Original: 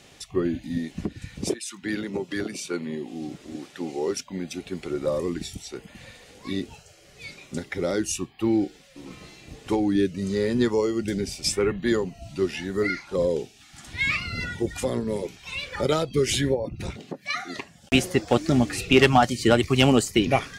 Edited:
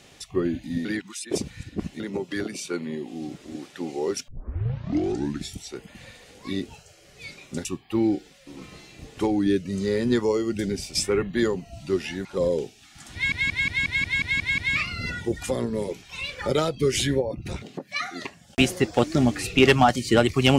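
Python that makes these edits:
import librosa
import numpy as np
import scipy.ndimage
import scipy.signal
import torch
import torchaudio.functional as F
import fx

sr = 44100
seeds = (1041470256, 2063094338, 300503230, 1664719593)

y = fx.edit(x, sr, fx.reverse_span(start_s=0.85, length_s=1.15),
    fx.tape_start(start_s=4.28, length_s=1.21),
    fx.cut(start_s=7.65, length_s=0.49),
    fx.cut(start_s=12.74, length_s=0.29),
    fx.stutter(start_s=13.92, slice_s=0.18, count=9), tone=tone)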